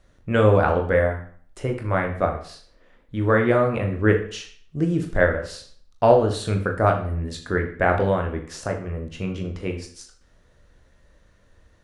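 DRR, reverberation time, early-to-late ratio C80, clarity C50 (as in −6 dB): 2.5 dB, 0.55 s, 12.5 dB, 9.0 dB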